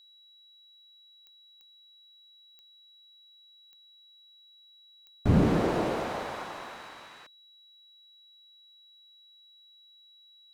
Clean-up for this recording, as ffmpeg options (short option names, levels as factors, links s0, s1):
-af "adeclick=t=4,bandreject=f=3900:w=30"